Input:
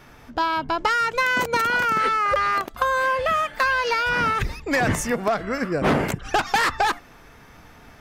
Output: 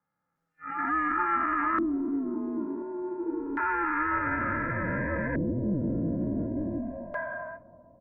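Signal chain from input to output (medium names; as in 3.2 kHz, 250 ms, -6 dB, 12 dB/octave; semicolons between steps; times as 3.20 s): spectral blur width 1470 ms; spectral noise reduction 23 dB; gate -47 dBFS, range -29 dB; peaking EQ 200 Hz +8 dB 2.8 oct; comb 2.7 ms, depth 86%; transient shaper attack -11 dB, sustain +5 dB; peak limiter -22.5 dBFS, peak gain reduction 8.5 dB; mistuned SSB -160 Hz 160–2600 Hz; flange 1.4 Hz, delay 4.9 ms, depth 1.2 ms, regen +80%; on a send: bucket-brigade echo 332 ms, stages 2048, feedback 72%, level -22 dB; on the sum: LFO low-pass square 0.28 Hz 350–1700 Hz; trim +4 dB; Opus 48 kbps 48 kHz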